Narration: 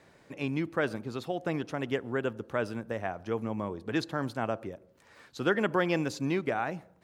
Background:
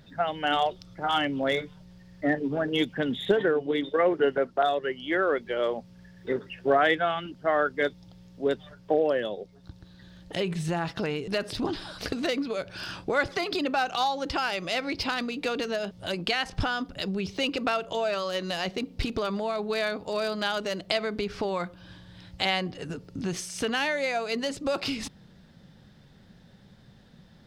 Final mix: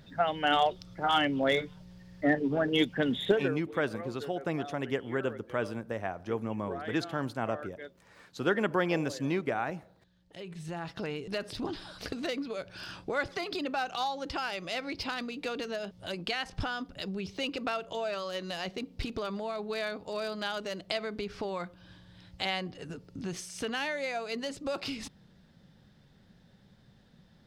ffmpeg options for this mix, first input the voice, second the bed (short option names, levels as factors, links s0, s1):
-filter_complex "[0:a]adelay=3000,volume=0.891[s0];[1:a]volume=4.22,afade=t=out:st=3.23:d=0.37:silence=0.11885,afade=t=in:st=10.29:d=0.8:silence=0.223872[s1];[s0][s1]amix=inputs=2:normalize=0"